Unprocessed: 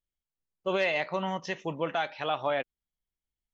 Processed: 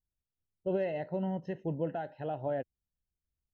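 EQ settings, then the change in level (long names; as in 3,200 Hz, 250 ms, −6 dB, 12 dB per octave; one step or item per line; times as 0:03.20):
moving average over 38 samples
parametric band 88 Hz +9.5 dB 1.4 octaves
0.0 dB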